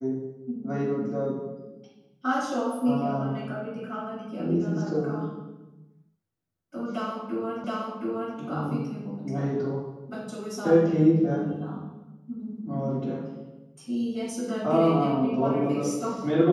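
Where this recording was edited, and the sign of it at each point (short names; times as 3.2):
7.64 repeat of the last 0.72 s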